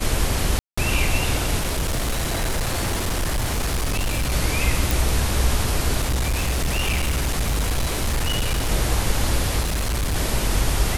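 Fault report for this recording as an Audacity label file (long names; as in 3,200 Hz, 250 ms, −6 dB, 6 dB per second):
0.590000	0.780000	drop-out 185 ms
1.590000	4.340000	clipping −19 dBFS
4.910000	4.910000	click
6.000000	8.710000	clipping −18 dBFS
9.600000	10.160000	clipping −19.5 dBFS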